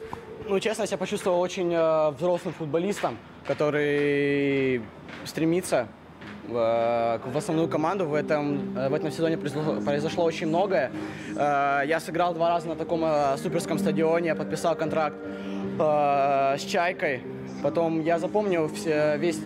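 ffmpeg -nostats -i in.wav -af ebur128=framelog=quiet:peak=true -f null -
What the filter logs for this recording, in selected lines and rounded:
Integrated loudness:
  I:         -25.9 LUFS
  Threshold: -36.1 LUFS
Loudness range:
  LRA:         1.5 LU
  Threshold: -46.1 LUFS
  LRA low:   -26.8 LUFS
  LRA high:  -25.3 LUFS
True peak:
  Peak:      -12.6 dBFS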